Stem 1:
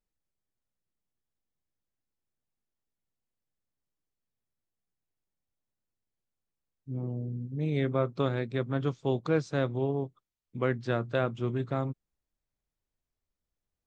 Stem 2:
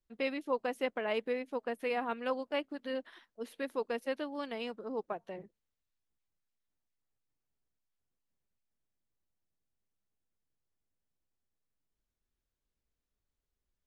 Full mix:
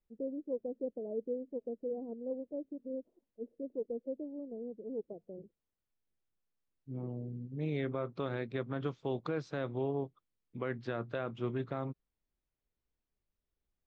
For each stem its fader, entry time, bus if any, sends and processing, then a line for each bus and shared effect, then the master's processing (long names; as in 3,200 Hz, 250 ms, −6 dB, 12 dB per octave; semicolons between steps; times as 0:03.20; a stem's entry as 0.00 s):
−2.0 dB, 0.00 s, no send, low-shelf EQ 140 Hz −9.5 dB
−1.0 dB, 0.00 s, no send, Butterworth low-pass 530 Hz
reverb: not used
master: low-pass filter 3,900 Hz 12 dB per octave; brickwall limiter −25 dBFS, peak gain reduction 7.5 dB